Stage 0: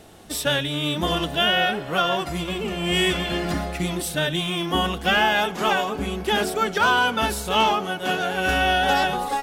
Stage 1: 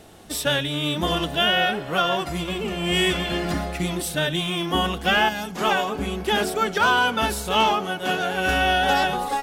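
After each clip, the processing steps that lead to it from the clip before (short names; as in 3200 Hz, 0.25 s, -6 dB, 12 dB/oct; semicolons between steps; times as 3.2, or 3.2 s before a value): spectral gain 5.29–5.55, 300–4000 Hz -10 dB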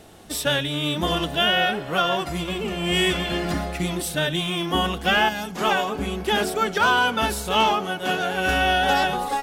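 nothing audible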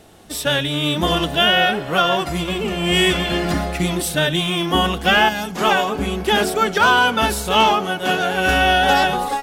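AGC gain up to 5.5 dB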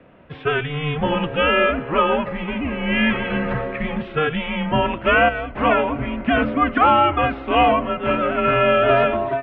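mistuned SSB -150 Hz 230–2700 Hz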